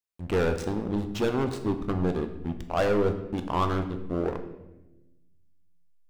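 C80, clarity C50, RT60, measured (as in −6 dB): 12.0 dB, 10.0 dB, 1.0 s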